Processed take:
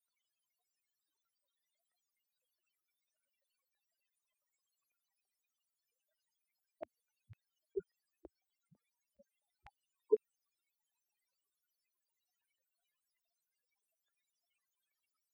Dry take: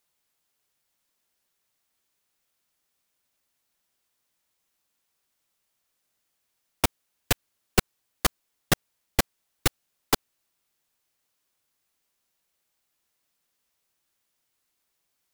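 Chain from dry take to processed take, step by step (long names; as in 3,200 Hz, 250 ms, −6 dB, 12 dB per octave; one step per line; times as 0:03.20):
spectral peaks only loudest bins 4
auto-filter high-pass square 6 Hz 590–2,200 Hz
level +7 dB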